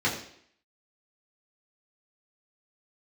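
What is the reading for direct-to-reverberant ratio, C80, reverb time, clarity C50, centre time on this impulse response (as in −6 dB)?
−6.5 dB, 9.5 dB, 0.65 s, 7.5 dB, 28 ms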